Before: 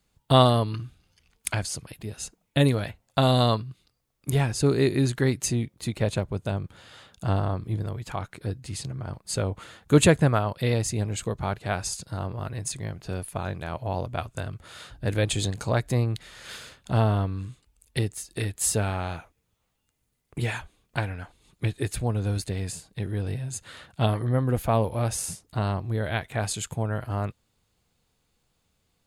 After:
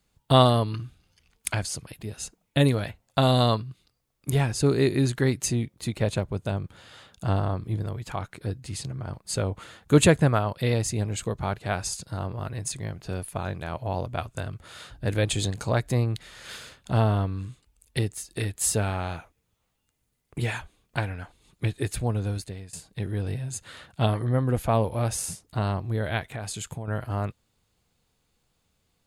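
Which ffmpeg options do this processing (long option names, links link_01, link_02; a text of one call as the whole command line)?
ffmpeg -i in.wav -filter_complex "[0:a]asettb=1/sr,asplit=3[link_01][link_02][link_03];[link_01]atrim=end=24.054[link_04];[link_02]atrim=start=24.05:end=24.91,asetpts=PTS-STARTPTS,afade=type=in:duration=0.004:curve=qsin,afade=type=out:start_time=0.856:duration=0.004:curve=qsin,lowpass=frequency=12000:width=0.5412,lowpass=frequency=12000:width=1.3066[link_05];[link_03]atrim=start=24.906[link_06];[link_04][link_05]acrossfade=duration=0.004:curve1=hsin:curve2=qsin[link_07];[link_07][link_06]acrossfade=duration=0.004:curve1=qsin:curve2=hsin,asettb=1/sr,asplit=3[link_08][link_09][link_10];[link_08]atrim=end=26.324[link_11];[link_09]atrim=start=26.32:end=26.88,asetpts=PTS-STARTPTS,afade=type=in:duration=0.004:curve=qsin,afade=type=out:start_time=0.556:duration=0.004:curve=qsin,acompressor=threshold=-30dB:ratio=5:attack=3.2:release=140:knee=1:detection=peak[link_12];[link_10]atrim=start=26.876[link_13];[link_11][link_12]acrossfade=duration=0.004:curve1=hsin:curve2=qsin[link_14];[link_14][link_13]acrossfade=duration=0.004:curve1=qsin:curve2=hsin,asplit=2[link_15][link_16];[link_15]atrim=end=22.73,asetpts=PTS-STARTPTS,afade=type=out:start_time=22.15:duration=0.58:silence=0.133352[link_17];[link_16]atrim=start=22.73,asetpts=PTS-STARTPTS,afade=type=in:duration=0.004:curve=hsin:silence=0.133352[link_18];[link_17][link_18]concat=n=2:v=0:a=1" out.wav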